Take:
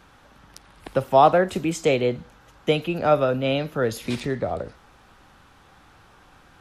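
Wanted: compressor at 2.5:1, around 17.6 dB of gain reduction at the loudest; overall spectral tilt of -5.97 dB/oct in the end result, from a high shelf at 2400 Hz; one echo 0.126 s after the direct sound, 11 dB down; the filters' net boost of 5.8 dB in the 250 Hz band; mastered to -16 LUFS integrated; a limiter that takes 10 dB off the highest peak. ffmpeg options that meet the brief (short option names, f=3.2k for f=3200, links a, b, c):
-af "equalizer=f=250:t=o:g=7.5,highshelf=f=2.4k:g=-3.5,acompressor=threshold=-37dB:ratio=2.5,alimiter=level_in=4.5dB:limit=-24dB:level=0:latency=1,volume=-4.5dB,aecho=1:1:126:0.282,volume=23dB"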